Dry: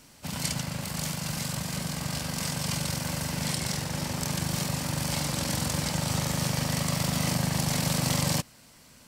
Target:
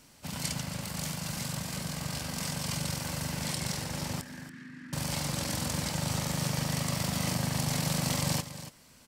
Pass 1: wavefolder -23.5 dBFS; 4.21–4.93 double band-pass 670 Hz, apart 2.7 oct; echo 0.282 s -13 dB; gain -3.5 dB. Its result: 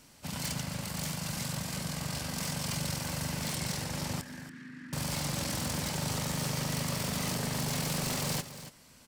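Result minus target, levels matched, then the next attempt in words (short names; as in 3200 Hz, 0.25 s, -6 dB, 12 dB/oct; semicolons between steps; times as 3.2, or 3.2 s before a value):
wavefolder: distortion +36 dB
wavefolder -12.5 dBFS; 4.21–4.93 double band-pass 670 Hz, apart 2.7 oct; echo 0.282 s -13 dB; gain -3.5 dB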